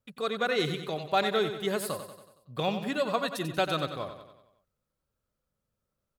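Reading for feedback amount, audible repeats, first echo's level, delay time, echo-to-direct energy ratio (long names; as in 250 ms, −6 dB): 53%, 5, −9.5 dB, 93 ms, −8.0 dB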